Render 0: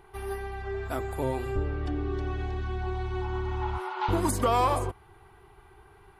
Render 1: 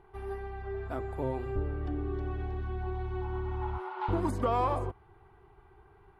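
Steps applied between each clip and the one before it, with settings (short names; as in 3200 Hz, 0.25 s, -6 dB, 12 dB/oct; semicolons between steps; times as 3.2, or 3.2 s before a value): LPF 1300 Hz 6 dB/oct; gain -3 dB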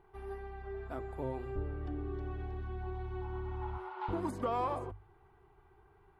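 notches 50/100 Hz; gain -5 dB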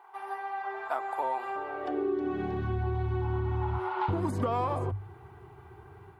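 AGC gain up to 4 dB; high-pass sweep 870 Hz -> 100 Hz, 1.63–2.79; compressor 6:1, threshold -35 dBFS, peak gain reduction 10 dB; gain +8.5 dB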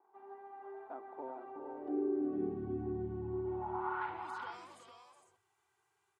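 band-pass sweep 270 Hz -> 7300 Hz, 3.28–4.69; vibrato 0.55 Hz 9.9 cents; tapped delay 0.368/0.455 s -8.5/-7.5 dB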